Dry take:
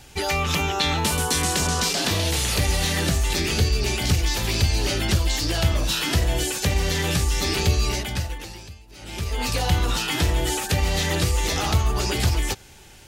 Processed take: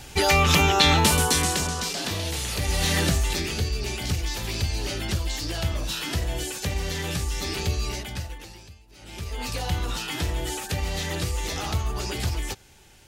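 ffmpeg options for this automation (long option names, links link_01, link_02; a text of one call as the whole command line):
ffmpeg -i in.wav -af "volume=11.5dB,afade=type=out:start_time=0.94:duration=0.8:silence=0.298538,afade=type=in:start_time=2.6:duration=0.35:silence=0.446684,afade=type=out:start_time=2.95:duration=0.58:silence=0.446684" out.wav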